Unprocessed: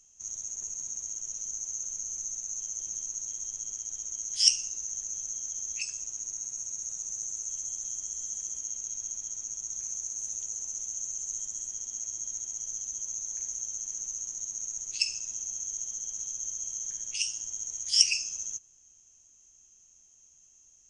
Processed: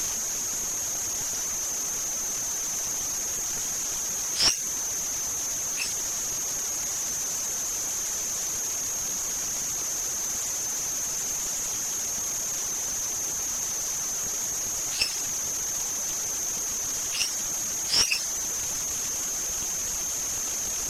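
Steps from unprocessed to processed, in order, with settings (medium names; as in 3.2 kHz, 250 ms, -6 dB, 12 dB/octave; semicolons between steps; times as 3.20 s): one-bit delta coder 64 kbps, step -26 dBFS; reverb removal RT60 0.52 s; trim +4 dB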